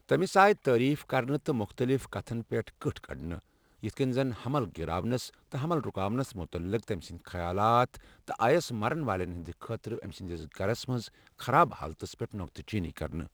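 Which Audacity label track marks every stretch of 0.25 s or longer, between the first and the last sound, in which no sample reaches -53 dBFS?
3.390000	3.820000	silence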